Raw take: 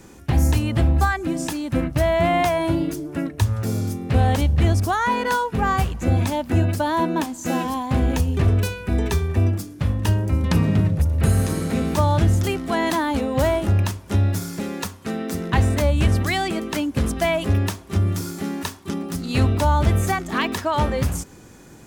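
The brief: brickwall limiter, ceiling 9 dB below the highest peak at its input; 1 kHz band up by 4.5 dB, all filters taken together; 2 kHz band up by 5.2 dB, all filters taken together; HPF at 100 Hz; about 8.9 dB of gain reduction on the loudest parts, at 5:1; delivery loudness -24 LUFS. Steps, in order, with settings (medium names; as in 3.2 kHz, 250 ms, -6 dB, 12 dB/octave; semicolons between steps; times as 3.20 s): high-pass 100 Hz; peaking EQ 1 kHz +4.5 dB; peaking EQ 2 kHz +5 dB; compression 5:1, threshold -23 dBFS; trim +4.5 dB; peak limiter -14.5 dBFS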